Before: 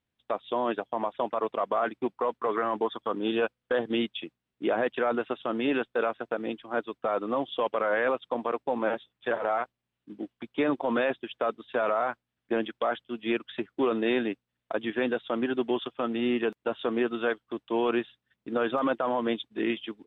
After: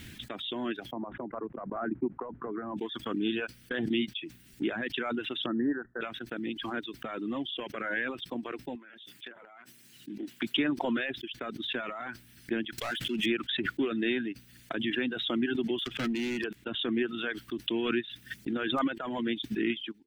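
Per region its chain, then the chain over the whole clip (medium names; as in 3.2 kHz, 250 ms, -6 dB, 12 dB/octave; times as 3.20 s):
0.92–2.77 s: low-pass 1.2 kHz 24 dB/octave + three bands compressed up and down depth 70%
5.46–6.01 s: Chebyshev low-pass 1.9 kHz, order 10 + upward expansion, over -45 dBFS
8.75–10.57 s: high-pass 210 Hz + compression 12:1, threshold -37 dBFS
12.78–13.26 s: bass shelf 250 Hz -6.5 dB + power-law waveshaper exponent 0.7
15.78–16.44 s: waveshaping leveller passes 1 + overload inside the chain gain 26 dB
whole clip: reverb removal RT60 0.94 s; high-order bell 740 Hz -14 dB; swell ahead of each attack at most 30 dB/s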